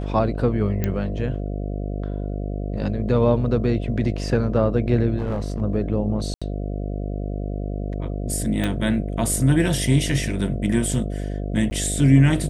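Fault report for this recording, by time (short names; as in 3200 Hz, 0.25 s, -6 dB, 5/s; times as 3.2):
buzz 50 Hz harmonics 14 -27 dBFS
0.84 pop -10 dBFS
5.17–5.62 clipped -20.5 dBFS
6.34–6.42 gap 76 ms
8.64 pop -12 dBFS
11.7–11.71 gap 10 ms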